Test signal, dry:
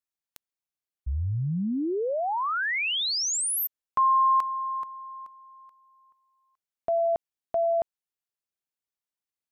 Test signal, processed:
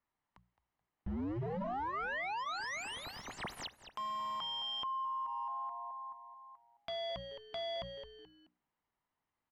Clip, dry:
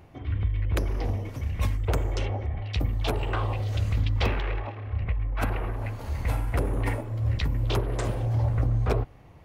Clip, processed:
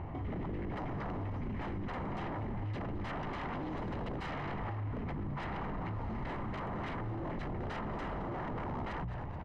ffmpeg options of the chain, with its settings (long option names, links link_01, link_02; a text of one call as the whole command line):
ffmpeg -i in.wav -filter_complex "[0:a]equalizer=frequency=1000:width=4:gain=3,asplit=2[link_01][link_02];[link_02]acrusher=bits=6:mix=0:aa=0.000001,volume=-6.5dB[link_03];[link_01][link_03]amix=inputs=2:normalize=0,aeval=exprs='(mod(5.96*val(0)+1,2)-1)/5.96':channel_layout=same,bandreject=frequency=60:width_type=h:width=6,bandreject=frequency=120:width_type=h:width=6,bandreject=frequency=180:width_type=h:width=6,aeval=exprs='0.0335*(abs(mod(val(0)/0.0335+3,4)-2)-1)':channel_layout=same,lowpass=1600,aecho=1:1:1:0.32,asplit=2[link_04][link_05];[link_05]asplit=3[link_06][link_07][link_08];[link_06]adelay=215,afreqshift=-120,volume=-15dB[link_09];[link_07]adelay=430,afreqshift=-240,volume=-23.6dB[link_10];[link_08]adelay=645,afreqshift=-360,volume=-32.3dB[link_11];[link_09][link_10][link_11]amix=inputs=3:normalize=0[link_12];[link_04][link_12]amix=inputs=2:normalize=0,alimiter=level_in=10dB:limit=-24dB:level=0:latency=1:release=141,volume=-10dB,acompressor=threshold=-50dB:ratio=4:attack=1.1:release=47:knee=6:detection=peak,bandreject=frequency=1100:width=25,volume=12.5dB" out.wav